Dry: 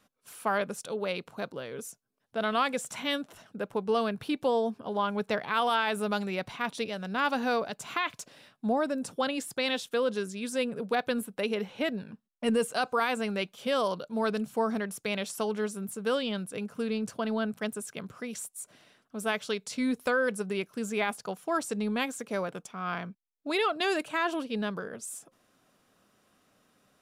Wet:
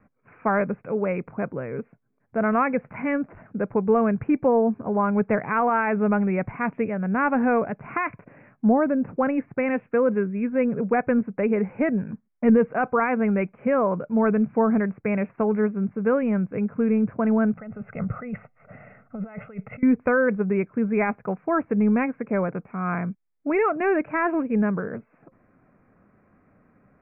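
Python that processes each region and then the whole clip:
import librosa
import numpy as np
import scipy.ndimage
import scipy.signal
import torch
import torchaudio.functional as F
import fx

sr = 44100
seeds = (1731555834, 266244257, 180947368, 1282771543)

y = fx.chain(x, sr, fx.high_shelf(hz=9500.0, db=-9.0),
    fx.over_compress(threshold_db=-42.0, ratio=-1.0),
    fx.comb(ms=1.5, depth=0.76), at=(17.57, 19.83))
y = scipy.signal.sosfilt(scipy.signal.butter(16, 2400.0, 'lowpass', fs=sr, output='sos'), y)
y = fx.low_shelf(y, sr, hz=280.0, db=12.0)
y = y * librosa.db_to_amplitude(4.0)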